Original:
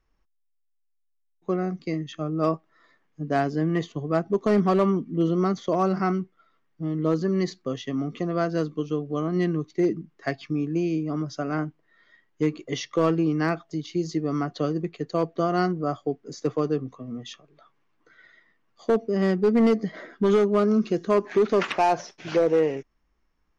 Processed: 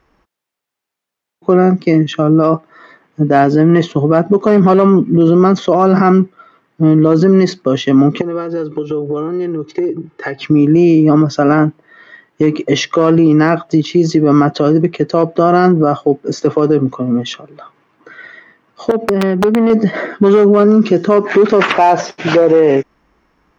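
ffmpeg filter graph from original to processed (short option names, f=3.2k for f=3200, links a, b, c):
-filter_complex "[0:a]asettb=1/sr,asplit=3[a][b][c];[a]atrim=end=8.214[d];[b]atrim=start=8.21:end=10.42,asetpts=PTS-STARTPTS,afade=t=in:d=0.004:c=qsin,afade=t=out:st=2.206:d=0.004:c=qsin,highshelf=f=5.4k:g=-9.5,acompressor=threshold=-38dB:ratio=10:attack=3.2:release=140:knee=1:detection=peak,aecho=1:1:2.3:0.97,atrim=end_sample=97461[e];[c]atrim=start=10.416[f];[d][e]acrossfade=d=0.004:c1=hsin:c2=qsin[g];[g][f]acrossfade=d=0.004:c1=qsin:c2=hsin,asettb=1/sr,asplit=3[h][i][j];[h]atrim=end=18.914[k];[i]atrim=start=18.91:end=19.7,asetpts=PTS-STARTPTS,afade=t=in:d=0.004:c=qsin,afade=t=out:st=0.786:d=0.004:c=qsin,lowpass=f=4.2k:w=0.5412,lowpass=f=4.2k:w=1.3066,acompressor=threshold=-30dB:ratio=8:attack=3.2:release=140:knee=1:detection=peak,aeval=exprs='(mod(20*val(0)+1,2)-1)/20':c=same[l];[j]atrim=start=19.696[m];[k][l]acrossfade=d=0.004:c1=hsin:c2=qsin[n];[n][m]acrossfade=d=0.004:c1=qsin:c2=hsin,highpass=f=180:p=1,highshelf=f=3.2k:g=-11.5,alimiter=level_in=23.5dB:limit=-1dB:release=50:level=0:latency=1,volume=-1dB"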